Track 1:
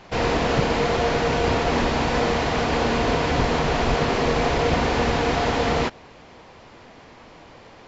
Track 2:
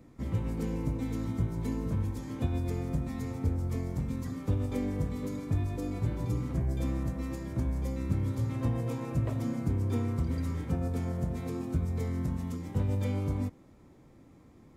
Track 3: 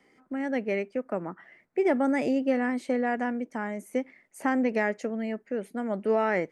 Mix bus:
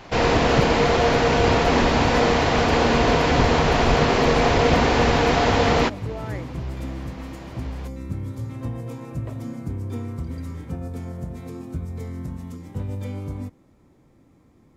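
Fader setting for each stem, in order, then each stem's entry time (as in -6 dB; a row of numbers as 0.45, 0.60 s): +3.0, 0.0, -10.5 dB; 0.00, 0.00, 0.00 s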